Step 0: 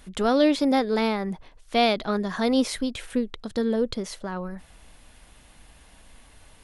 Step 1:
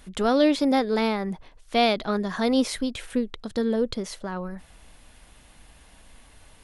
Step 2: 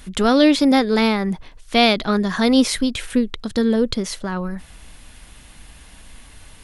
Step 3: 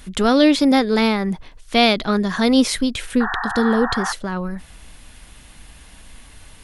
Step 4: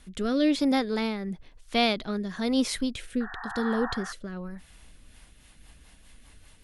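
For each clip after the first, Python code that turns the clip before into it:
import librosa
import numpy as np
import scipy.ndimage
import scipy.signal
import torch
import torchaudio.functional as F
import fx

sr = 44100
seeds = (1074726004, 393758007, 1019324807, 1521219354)

y1 = x
y2 = fx.peak_eq(y1, sr, hz=630.0, db=-5.5, octaves=1.7)
y2 = y2 * librosa.db_to_amplitude(9.0)
y3 = fx.spec_paint(y2, sr, seeds[0], shape='noise', start_s=3.2, length_s=0.93, low_hz=690.0, high_hz=1900.0, level_db=-25.0)
y4 = fx.rotary_switch(y3, sr, hz=1.0, then_hz=5.0, switch_at_s=4.68)
y4 = y4 * librosa.db_to_amplitude(-8.5)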